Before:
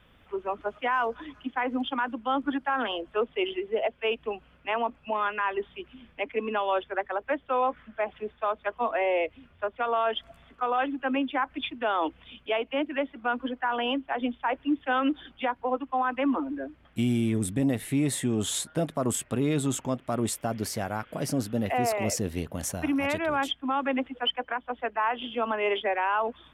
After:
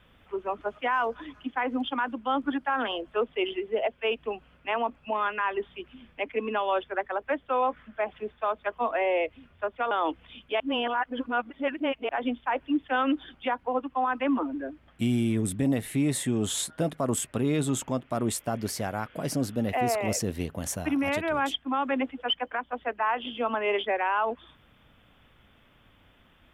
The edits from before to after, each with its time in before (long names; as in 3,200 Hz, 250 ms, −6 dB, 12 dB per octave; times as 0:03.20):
0:09.91–0:11.88: remove
0:12.57–0:14.06: reverse